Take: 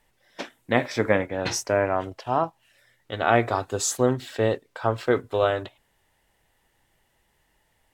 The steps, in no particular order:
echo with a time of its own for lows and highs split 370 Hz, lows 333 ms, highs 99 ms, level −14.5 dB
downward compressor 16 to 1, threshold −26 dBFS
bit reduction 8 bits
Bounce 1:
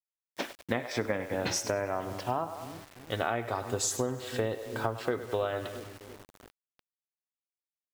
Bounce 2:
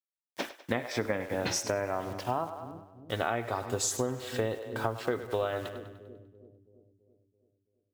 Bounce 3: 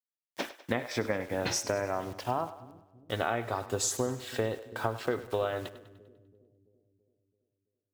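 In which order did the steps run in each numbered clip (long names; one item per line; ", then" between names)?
echo with a time of its own for lows and highs, then bit reduction, then downward compressor
bit reduction, then echo with a time of its own for lows and highs, then downward compressor
bit reduction, then downward compressor, then echo with a time of its own for lows and highs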